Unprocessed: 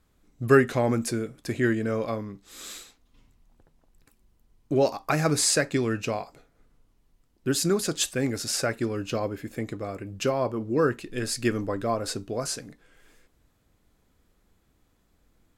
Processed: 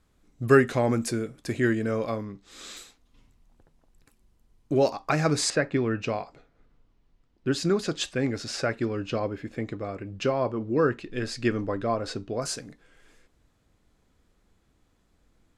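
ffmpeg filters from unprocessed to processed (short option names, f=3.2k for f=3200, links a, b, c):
-af "asetnsamples=n=441:p=0,asendcmd='2.25 lowpass f 6400;2.77 lowpass f 12000;4.9 lowpass f 6500;5.5 lowpass f 2400;6.02 lowpass f 4500;12.42 lowpass f 9200',lowpass=11k"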